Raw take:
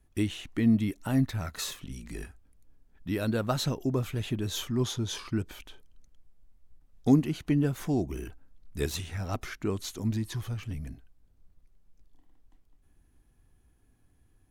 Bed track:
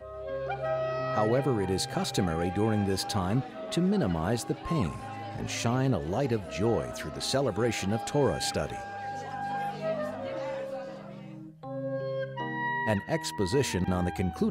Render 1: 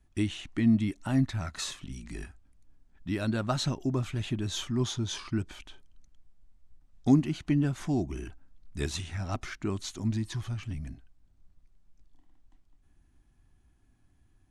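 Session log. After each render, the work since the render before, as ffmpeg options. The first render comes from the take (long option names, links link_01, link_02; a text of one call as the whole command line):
ffmpeg -i in.wav -af "lowpass=frequency=9200:width=0.5412,lowpass=frequency=9200:width=1.3066,equalizer=frequency=470:width=6.7:gain=-14.5" out.wav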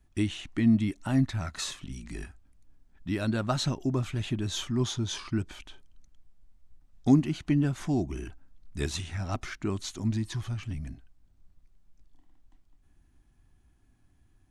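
ffmpeg -i in.wav -af "volume=1dB" out.wav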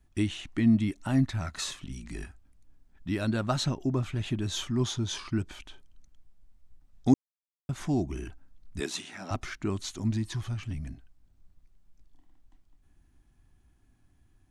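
ffmpeg -i in.wav -filter_complex "[0:a]asettb=1/sr,asplit=3[link_01][link_02][link_03];[link_01]atrim=end=3.644[link_04];[link_02]atrim=start=3.64:end=4.26,asetpts=PTS-STARTPTS,afade=type=in:duration=0.004:curve=qsin,afade=type=out:start_time=0.616:duration=0.004:curve=qsin,highshelf=frequency=4100:gain=-5[link_05];[link_03]atrim=start=4.256[link_06];[link_04][link_05]acrossfade=duration=0.004:curve1=hsin:curve2=qsin[link_07];[link_07][link_06]acrossfade=duration=0.004:curve1=qsin:curve2=hsin,asettb=1/sr,asplit=3[link_08][link_09][link_10];[link_08]atrim=end=8.804[link_11];[link_09]atrim=start=8.8:end=9.31,asetpts=PTS-STARTPTS,afade=type=in:duration=0.004:curve=qsin,afade=type=out:start_time=0.506:duration=0.004:curve=qsin,highpass=frequency=210:width=0.5412,highpass=frequency=210:width=1.3066[link_12];[link_10]atrim=start=9.306[link_13];[link_11][link_12]acrossfade=duration=0.004:curve1=hsin:curve2=qsin[link_14];[link_14][link_13]acrossfade=duration=0.004:curve1=qsin:curve2=hsin,asplit=3[link_15][link_16][link_17];[link_15]atrim=end=7.14,asetpts=PTS-STARTPTS,afade=type=out:start_time=7.136:duration=0.004:curve=hsin[link_18];[link_16]atrim=start=7.14:end=7.69,asetpts=PTS-STARTPTS,volume=0[link_19];[link_17]atrim=start=7.69,asetpts=PTS-STARTPTS,afade=type=in:duration=0.004:curve=hsin[link_20];[link_18][link_19][link_20]concat=n=3:v=0:a=1" out.wav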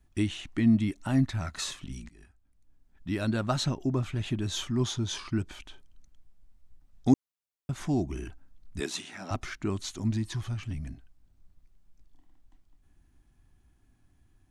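ffmpeg -i in.wav -filter_complex "[0:a]asplit=2[link_01][link_02];[link_01]atrim=end=2.09,asetpts=PTS-STARTPTS,afade=type=out:start_time=2.086:duration=0.004:curve=hsin:silence=0.0707946[link_03];[link_02]atrim=start=2.09,asetpts=PTS-STARTPTS,afade=type=in:duration=1.13:silence=0.0707946[link_04];[link_03][link_04]concat=n=2:v=0:a=1" out.wav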